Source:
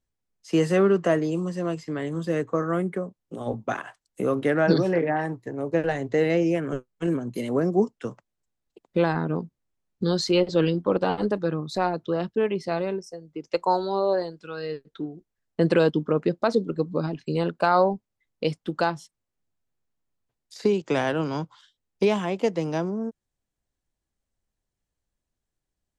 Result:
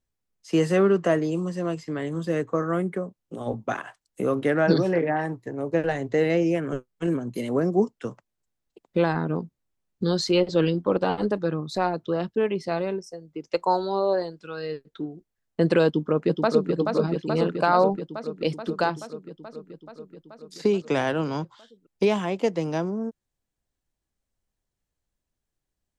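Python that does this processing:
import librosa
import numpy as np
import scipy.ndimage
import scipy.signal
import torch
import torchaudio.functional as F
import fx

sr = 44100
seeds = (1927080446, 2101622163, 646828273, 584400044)

y = fx.echo_throw(x, sr, start_s=15.86, length_s=0.84, ms=430, feedback_pct=75, wet_db=-4.5)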